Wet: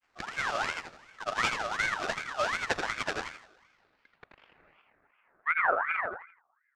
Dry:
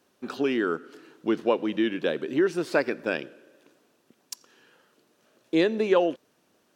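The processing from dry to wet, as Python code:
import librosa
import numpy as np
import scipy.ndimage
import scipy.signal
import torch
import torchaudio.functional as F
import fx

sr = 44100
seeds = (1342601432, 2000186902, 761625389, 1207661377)

p1 = fx.peak_eq(x, sr, hz=420.0, db=-9.5, octaves=0.43)
p2 = fx.sample_hold(p1, sr, seeds[0], rate_hz=2100.0, jitter_pct=20)
p3 = fx.granulator(p2, sr, seeds[1], grain_ms=100.0, per_s=20.0, spray_ms=100.0, spread_st=0)
p4 = fx.filter_sweep_lowpass(p3, sr, from_hz=5300.0, to_hz=190.0, start_s=3.44, end_s=6.45, q=1.3)
p5 = p4 + fx.echo_feedback(p4, sr, ms=82, feedback_pct=35, wet_db=-6.0, dry=0)
y = fx.ring_lfo(p5, sr, carrier_hz=1400.0, swing_pct=35, hz=2.7)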